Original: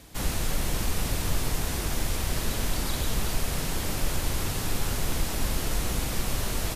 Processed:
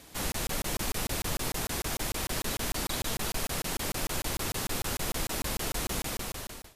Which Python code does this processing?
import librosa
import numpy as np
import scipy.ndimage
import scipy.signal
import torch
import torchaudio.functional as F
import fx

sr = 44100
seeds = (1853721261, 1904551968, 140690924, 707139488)

p1 = fx.fade_out_tail(x, sr, length_s=0.75)
p2 = fx.low_shelf(p1, sr, hz=160.0, db=-10.0)
p3 = p2 + fx.echo_single(p2, sr, ms=328, db=-23.5, dry=0)
y = fx.buffer_crackle(p3, sr, first_s=0.32, period_s=0.15, block=1024, kind='zero')